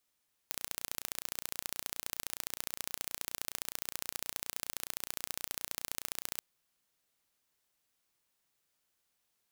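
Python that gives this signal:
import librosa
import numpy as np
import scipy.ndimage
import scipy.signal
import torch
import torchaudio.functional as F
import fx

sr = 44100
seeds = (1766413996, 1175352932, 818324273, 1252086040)

y = fx.impulse_train(sr, length_s=5.88, per_s=29.6, accent_every=2, level_db=-8.0)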